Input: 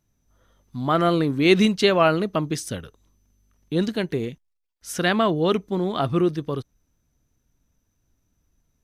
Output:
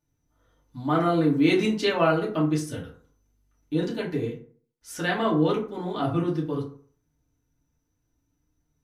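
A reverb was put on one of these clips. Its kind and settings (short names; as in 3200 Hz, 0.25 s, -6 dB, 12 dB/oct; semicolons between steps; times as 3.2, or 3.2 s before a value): FDN reverb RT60 0.48 s, low-frequency decay 1×, high-frequency decay 0.5×, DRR -5.5 dB; gain -10.5 dB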